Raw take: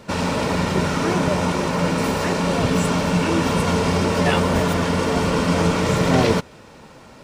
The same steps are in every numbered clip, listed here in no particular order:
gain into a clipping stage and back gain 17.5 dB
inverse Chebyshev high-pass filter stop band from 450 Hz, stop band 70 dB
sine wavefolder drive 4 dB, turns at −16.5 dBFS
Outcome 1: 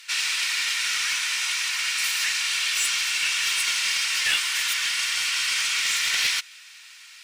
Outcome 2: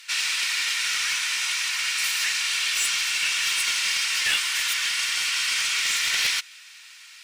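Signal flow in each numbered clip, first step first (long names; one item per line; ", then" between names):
inverse Chebyshev high-pass filter, then gain into a clipping stage and back, then sine wavefolder
inverse Chebyshev high-pass filter, then sine wavefolder, then gain into a clipping stage and back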